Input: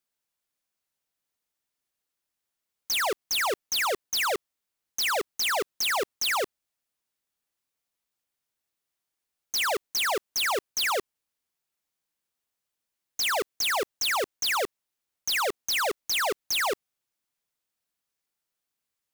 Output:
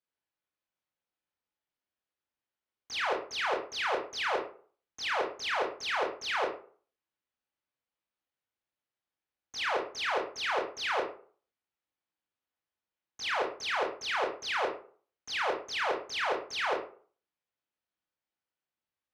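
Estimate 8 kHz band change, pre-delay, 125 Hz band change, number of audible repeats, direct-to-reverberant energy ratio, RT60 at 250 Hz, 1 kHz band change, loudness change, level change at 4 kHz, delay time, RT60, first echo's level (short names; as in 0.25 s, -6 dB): -16.0 dB, 22 ms, n/a, none, -1.5 dB, 0.45 s, -2.5 dB, -5.5 dB, -8.0 dB, none, 0.45 s, none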